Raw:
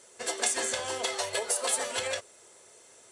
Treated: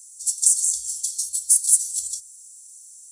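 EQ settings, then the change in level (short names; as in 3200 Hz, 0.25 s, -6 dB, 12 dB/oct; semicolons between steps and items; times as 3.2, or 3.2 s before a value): inverse Chebyshev band-stop 140–2500 Hz, stop band 50 dB; high shelf 8300 Hz +11.5 dB; +7.5 dB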